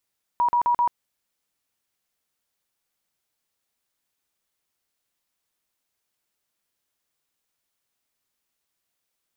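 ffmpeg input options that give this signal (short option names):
-f lavfi -i "aevalsrc='0.141*sin(2*PI*962*mod(t,0.13))*lt(mod(t,0.13),83/962)':d=0.52:s=44100"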